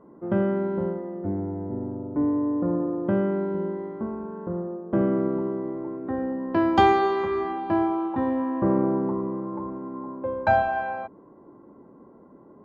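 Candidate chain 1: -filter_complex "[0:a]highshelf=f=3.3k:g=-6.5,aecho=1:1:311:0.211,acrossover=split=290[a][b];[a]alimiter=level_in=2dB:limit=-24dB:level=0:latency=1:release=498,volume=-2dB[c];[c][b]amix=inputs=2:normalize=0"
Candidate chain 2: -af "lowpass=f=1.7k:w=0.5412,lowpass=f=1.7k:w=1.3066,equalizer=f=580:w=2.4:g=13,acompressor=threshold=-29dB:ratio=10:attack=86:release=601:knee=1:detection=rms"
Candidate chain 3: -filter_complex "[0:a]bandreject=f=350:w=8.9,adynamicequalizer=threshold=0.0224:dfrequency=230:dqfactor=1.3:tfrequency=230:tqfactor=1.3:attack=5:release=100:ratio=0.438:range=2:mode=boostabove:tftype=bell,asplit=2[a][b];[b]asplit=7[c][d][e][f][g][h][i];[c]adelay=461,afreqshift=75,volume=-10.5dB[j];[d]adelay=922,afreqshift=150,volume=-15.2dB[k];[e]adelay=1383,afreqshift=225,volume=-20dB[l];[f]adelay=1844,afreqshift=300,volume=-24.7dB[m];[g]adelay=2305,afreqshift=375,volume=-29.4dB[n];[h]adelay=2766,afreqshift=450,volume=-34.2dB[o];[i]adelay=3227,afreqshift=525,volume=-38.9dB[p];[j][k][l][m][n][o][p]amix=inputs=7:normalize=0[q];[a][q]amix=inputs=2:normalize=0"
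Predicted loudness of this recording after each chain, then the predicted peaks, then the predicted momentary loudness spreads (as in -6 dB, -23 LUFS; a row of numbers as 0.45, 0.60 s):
-27.0, -32.5, -24.5 LUFS; -7.5, -13.5, -5.5 dBFS; 10, 11, 11 LU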